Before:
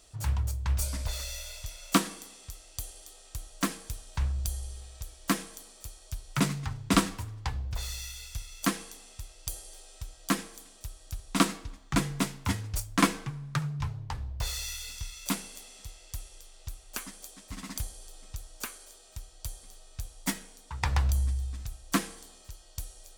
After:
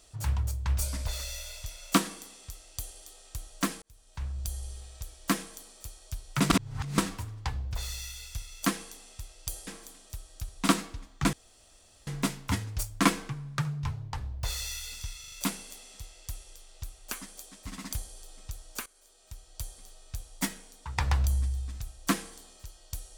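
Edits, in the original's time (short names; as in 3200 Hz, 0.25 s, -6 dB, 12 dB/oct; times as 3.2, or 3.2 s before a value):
3.82–4.69 fade in
6.5–6.98 reverse
9.67–10.38 cut
12.04 insert room tone 0.74 s
15.17 stutter 0.04 s, 4 plays
18.71–19.46 fade in, from -17 dB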